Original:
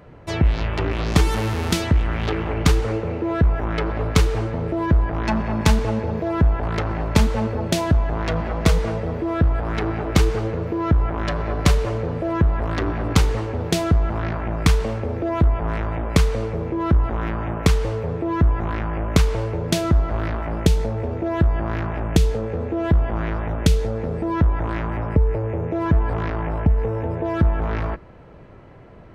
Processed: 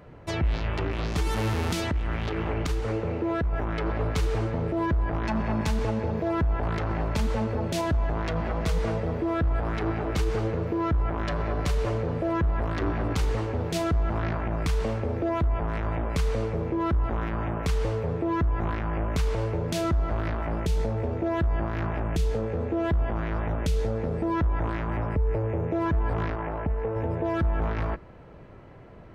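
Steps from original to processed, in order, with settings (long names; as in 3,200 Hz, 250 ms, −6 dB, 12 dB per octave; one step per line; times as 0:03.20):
0:01.91–0:03.53: downward compressor, threshold −19 dBFS, peak gain reduction 8 dB
0:26.36–0:26.96: bass and treble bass −7 dB, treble −13 dB
brickwall limiter −14.5 dBFS, peak gain reduction 11.5 dB
level −3 dB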